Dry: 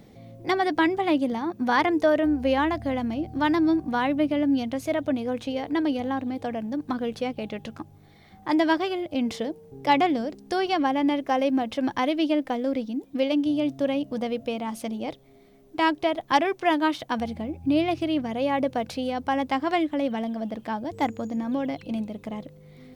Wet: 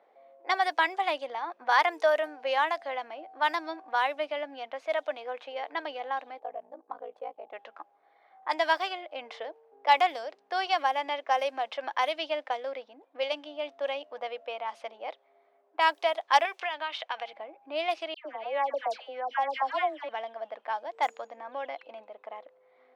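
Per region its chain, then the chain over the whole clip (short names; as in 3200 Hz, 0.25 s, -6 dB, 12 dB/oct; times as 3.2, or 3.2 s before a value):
6.39–7.53 band shelf 2800 Hz -13 dB 2.5 oct + notch 920 Hz, Q 9 + ring modulator 28 Hz
16.45–17.33 HPF 300 Hz + bell 2800 Hz +7.5 dB 1.1 oct + compressor 10:1, threshold -26 dBFS
18.14–20.09 high shelf 3200 Hz -10.5 dB + dispersion lows, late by 0.116 s, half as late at 1700 Hz
whole clip: HPF 610 Hz 24 dB/oct; low-pass opened by the level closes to 1200 Hz, open at -22.5 dBFS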